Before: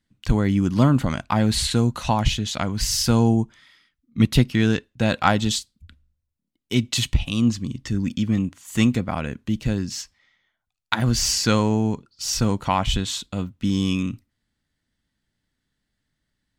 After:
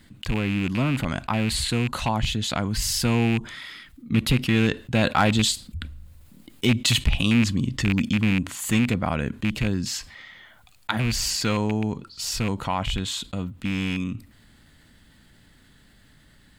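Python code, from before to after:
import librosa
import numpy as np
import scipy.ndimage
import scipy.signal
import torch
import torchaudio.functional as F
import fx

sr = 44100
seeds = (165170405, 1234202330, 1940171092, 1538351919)

y = fx.rattle_buzz(x, sr, strikes_db=-19.0, level_db=-14.0)
y = fx.doppler_pass(y, sr, speed_mps=5, closest_m=6.8, pass_at_s=6.46)
y = np.clip(10.0 ** (12.5 / 20.0) * y, -1.0, 1.0) / 10.0 ** (12.5 / 20.0)
y = fx.peak_eq(y, sr, hz=5800.0, db=-7.0, octaves=0.36)
y = fx.env_flatten(y, sr, amount_pct=50)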